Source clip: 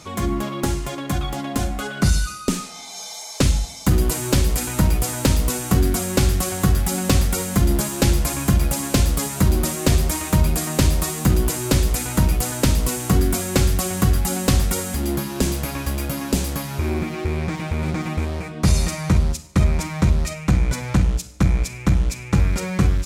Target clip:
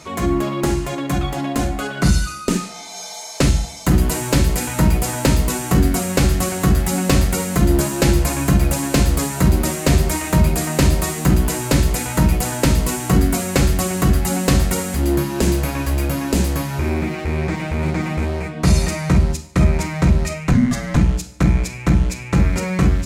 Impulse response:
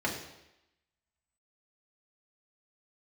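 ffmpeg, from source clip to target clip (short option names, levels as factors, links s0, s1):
-filter_complex "[0:a]asplit=2[s0][s1];[s1]lowpass=9300[s2];[1:a]atrim=start_sample=2205,atrim=end_sample=3528[s3];[s2][s3]afir=irnorm=-1:irlink=0,volume=0.335[s4];[s0][s4]amix=inputs=2:normalize=0,asettb=1/sr,asplit=3[s5][s6][s7];[s5]atrim=end=20.534[s8];[s6]atrim=start=20.53:end=20.97,asetpts=PTS-STARTPTS,afade=t=in:d=0.004:c=qsin,afade=t=out:st=0.436:d=0.004:c=qsin,afreqshift=-300[s9];[s7]atrim=start=20.966[s10];[s8][s9]acrossfade=d=0.004:c1=hsin:c2=qsin[s11];[s11][s10]acrossfade=d=0.004:c1=qsin:c2=hsin"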